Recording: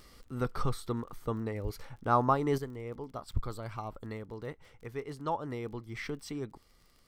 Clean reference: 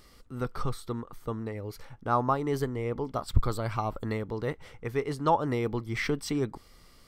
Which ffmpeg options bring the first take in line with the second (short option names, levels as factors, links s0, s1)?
-filter_complex "[0:a]adeclick=t=4,asplit=3[s0][s1][s2];[s0]afade=t=out:st=1.63:d=0.02[s3];[s1]highpass=f=140:w=0.5412,highpass=f=140:w=1.3066,afade=t=in:st=1.63:d=0.02,afade=t=out:st=1.75:d=0.02[s4];[s2]afade=t=in:st=1.75:d=0.02[s5];[s3][s4][s5]amix=inputs=3:normalize=0,asetnsamples=n=441:p=0,asendcmd='2.58 volume volume 9dB',volume=1"